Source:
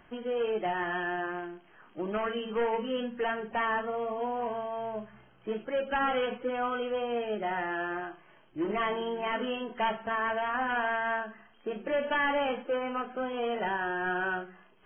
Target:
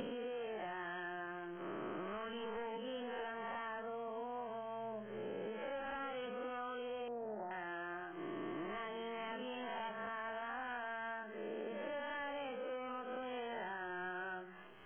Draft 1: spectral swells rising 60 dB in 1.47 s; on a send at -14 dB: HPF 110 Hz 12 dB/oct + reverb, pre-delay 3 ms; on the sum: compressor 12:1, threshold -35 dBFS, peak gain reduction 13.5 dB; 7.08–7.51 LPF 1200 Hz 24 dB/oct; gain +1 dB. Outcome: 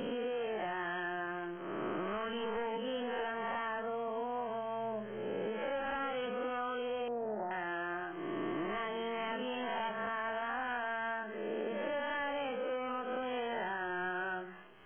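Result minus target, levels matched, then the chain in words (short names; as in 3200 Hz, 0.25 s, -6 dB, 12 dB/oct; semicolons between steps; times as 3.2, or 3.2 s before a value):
compressor: peak gain reduction -6.5 dB
spectral swells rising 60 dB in 1.47 s; on a send at -14 dB: HPF 110 Hz 12 dB/oct + reverb, pre-delay 3 ms; on the sum: compressor 12:1, threshold -42 dBFS, peak gain reduction 19.5 dB; 7.08–7.51 LPF 1200 Hz 24 dB/oct; gain +1 dB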